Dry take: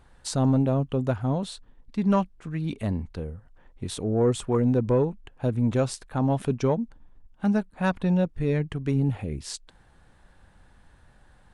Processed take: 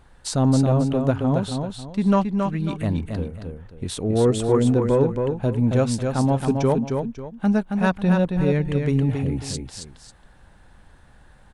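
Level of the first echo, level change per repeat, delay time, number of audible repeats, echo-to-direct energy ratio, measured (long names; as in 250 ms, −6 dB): −5.0 dB, −10.0 dB, 272 ms, 2, −4.5 dB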